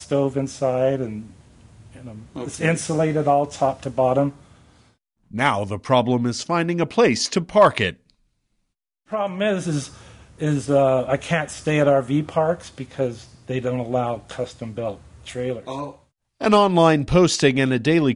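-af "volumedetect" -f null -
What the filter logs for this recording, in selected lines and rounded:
mean_volume: -21.5 dB
max_volume: -2.9 dB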